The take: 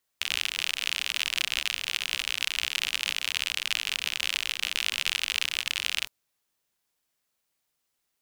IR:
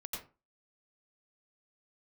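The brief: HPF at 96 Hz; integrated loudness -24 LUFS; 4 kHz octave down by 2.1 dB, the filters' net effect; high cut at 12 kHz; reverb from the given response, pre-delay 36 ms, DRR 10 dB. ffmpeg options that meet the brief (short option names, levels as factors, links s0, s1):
-filter_complex "[0:a]highpass=96,lowpass=12000,equalizer=f=4000:t=o:g=-3,asplit=2[s0][s1];[1:a]atrim=start_sample=2205,adelay=36[s2];[s1][s2]afir=irnorm=-1:irlink=0,volume=0.335[s3];[s0][s3]amix=inputs=2:normalize=0,volume=1.78"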